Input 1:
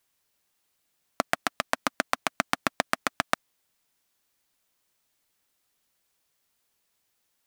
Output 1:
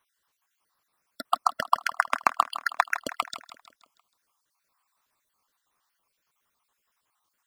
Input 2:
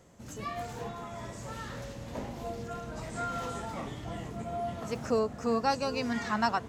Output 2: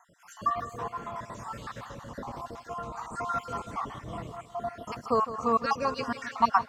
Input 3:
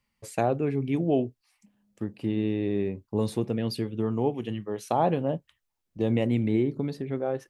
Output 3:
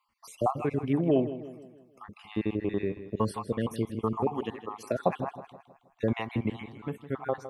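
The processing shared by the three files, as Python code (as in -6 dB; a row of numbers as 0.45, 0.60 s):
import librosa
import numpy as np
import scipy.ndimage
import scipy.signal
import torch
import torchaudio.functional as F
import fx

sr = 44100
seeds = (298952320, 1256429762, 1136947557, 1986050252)

y = fx.spec_dropout(x, sr, seeds[0], share_pct=50)
y = fx.peak_eq(y, sr, hz=1100.0, db=14.0, octaves=0.85)
y = fx.echo_feedback(y, sr, ms=159, feedback_pct=47, wet_db=-13.0)
y = y * 10.0 ** (-1.0 / 20.0)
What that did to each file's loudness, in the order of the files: +2.5, +2.0, -3.0 LU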